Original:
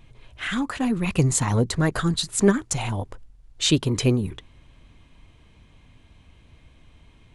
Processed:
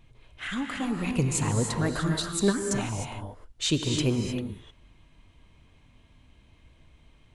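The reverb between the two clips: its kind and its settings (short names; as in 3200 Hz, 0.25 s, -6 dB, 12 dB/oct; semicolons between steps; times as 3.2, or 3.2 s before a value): non-linear reverb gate 0.33 s rising, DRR 3 dB; gain -6 dB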